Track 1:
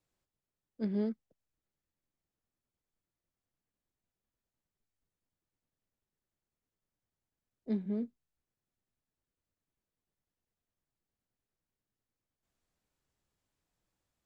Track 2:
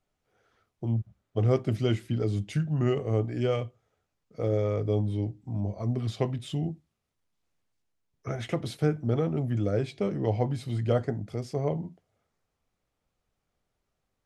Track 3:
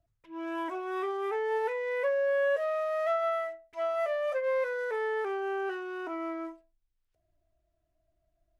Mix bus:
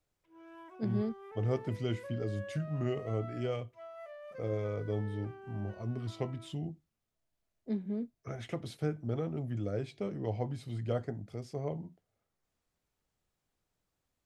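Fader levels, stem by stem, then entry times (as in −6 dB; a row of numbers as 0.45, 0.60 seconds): −1.0, −8.0, −17.5 decibels; 0.00, 0.00, 0.00 seconds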